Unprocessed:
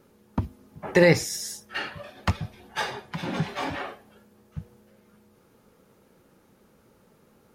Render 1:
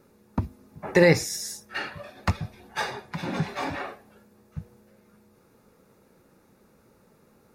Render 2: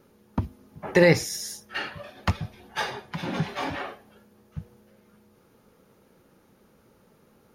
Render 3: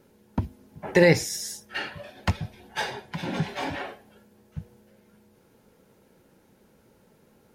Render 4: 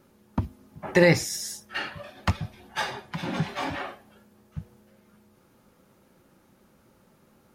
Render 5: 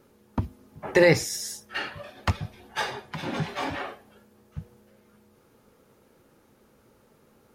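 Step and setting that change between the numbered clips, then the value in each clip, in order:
band-stop, frequency: 3.1 kHz, 7.8 kHz, 1.2 kHz, 450 Hz, 180 Hz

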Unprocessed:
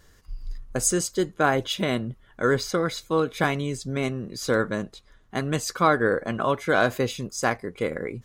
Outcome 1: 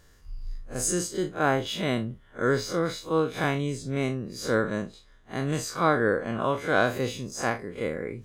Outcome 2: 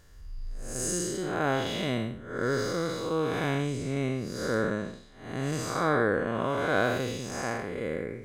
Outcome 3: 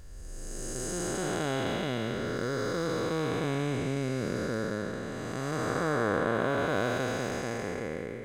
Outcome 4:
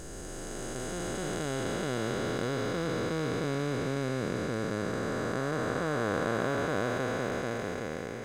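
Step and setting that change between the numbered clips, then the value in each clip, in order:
spectral blur, width: 84 ms, 244 ms, 723 ms, 1780 ms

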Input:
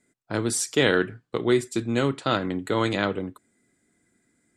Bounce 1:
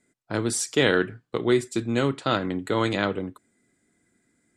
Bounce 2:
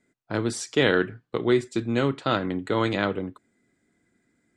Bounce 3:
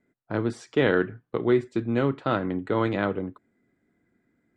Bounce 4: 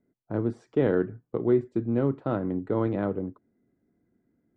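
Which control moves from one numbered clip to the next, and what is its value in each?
Bessel low-pass, frequency: 12 kHz, 4.7 kHz, 1.7 kHz, 600 Hz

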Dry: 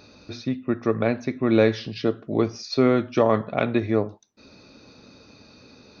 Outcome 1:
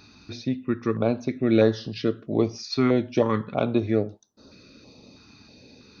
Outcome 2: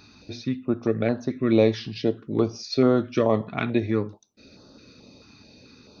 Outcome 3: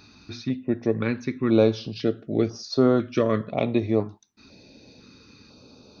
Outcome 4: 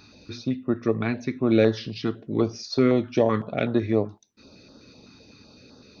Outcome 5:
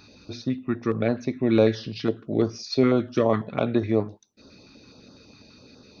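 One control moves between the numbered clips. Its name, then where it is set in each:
step-sequenced notch, rate: 3.1 Hz, 4.6 Hz, 2 Hz, 7.9 Hz, 12 Hz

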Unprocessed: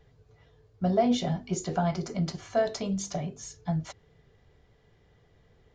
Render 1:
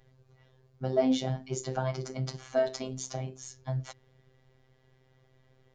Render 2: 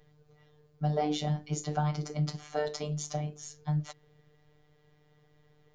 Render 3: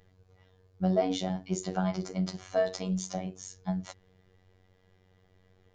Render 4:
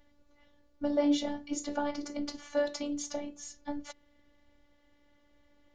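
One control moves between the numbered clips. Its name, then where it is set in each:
robot voice, frequency: 130 Hz, 150 Hz, 93 Hz, 290 Hz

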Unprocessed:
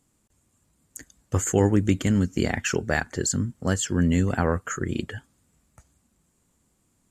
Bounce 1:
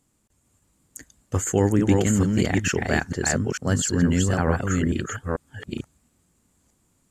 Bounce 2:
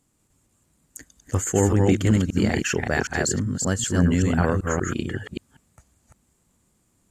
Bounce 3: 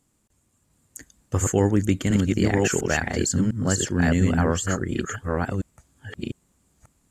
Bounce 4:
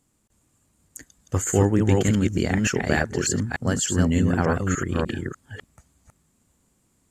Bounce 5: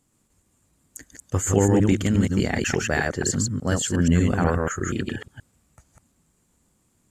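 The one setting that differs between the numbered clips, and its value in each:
chunks repeated in reverse, time: 447 ms, 192 ms, 702 ms, 297 ms, 120 ms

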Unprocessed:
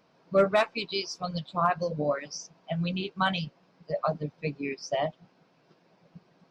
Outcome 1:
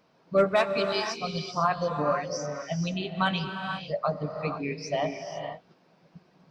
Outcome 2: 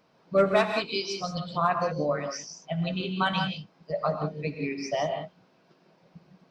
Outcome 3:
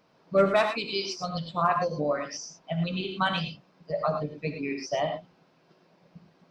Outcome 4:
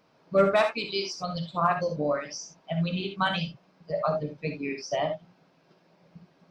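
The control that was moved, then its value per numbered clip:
gated-style reverb, gate: 520 ms, 200 ms, 130 ms, 90 ms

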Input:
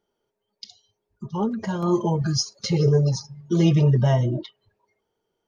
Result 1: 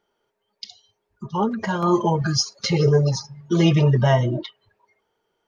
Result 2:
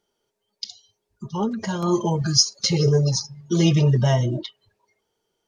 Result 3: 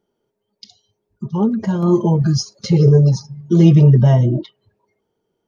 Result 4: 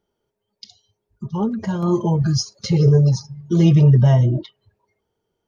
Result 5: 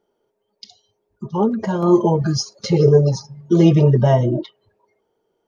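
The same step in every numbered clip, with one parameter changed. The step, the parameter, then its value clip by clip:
peaking EQ, frequency: 1.6 kHz, 6.8 kHz, 190 Hz, 71 Hz, 470 Hz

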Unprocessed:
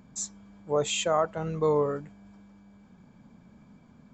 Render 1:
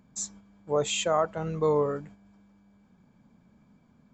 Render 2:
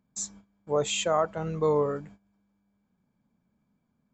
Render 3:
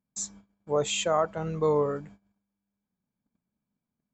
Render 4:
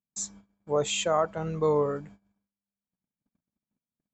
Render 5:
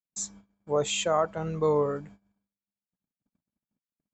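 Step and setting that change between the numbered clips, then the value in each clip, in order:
gate, range: -6 dB, -19 dB, -31 dB, -43 dB, -59 dB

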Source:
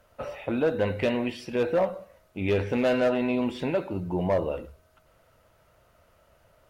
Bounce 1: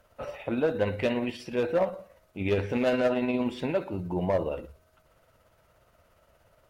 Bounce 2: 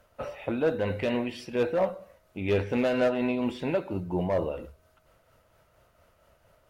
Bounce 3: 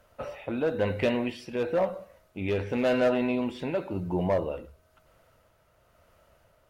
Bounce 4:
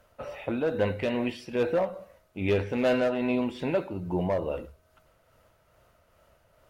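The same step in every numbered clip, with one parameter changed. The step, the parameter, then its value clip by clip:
tremolo, rate: 17 Hz, 4.3 Hz, 0.97 Hz, 2.4 Hz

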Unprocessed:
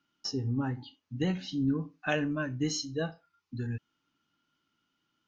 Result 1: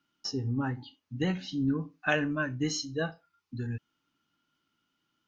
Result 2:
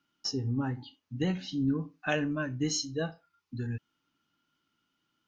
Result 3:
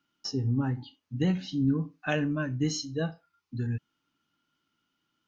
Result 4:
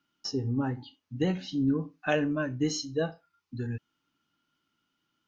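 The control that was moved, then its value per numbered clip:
dynamic bell, frequency: 1.5 kHz, 8.6 kHz, 150 Hz, 490 Hz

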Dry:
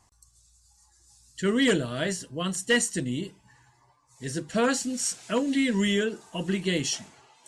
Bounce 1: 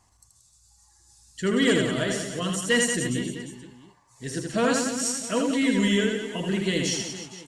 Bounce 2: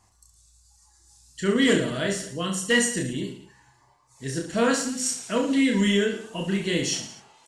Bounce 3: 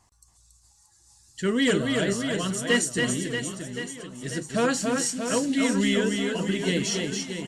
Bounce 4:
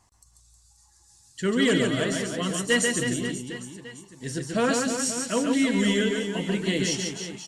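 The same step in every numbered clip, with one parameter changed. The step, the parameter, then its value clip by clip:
reverse bouncing-ball echo, first gap: 80 ms, 30 ms, 280 ms, 140 ms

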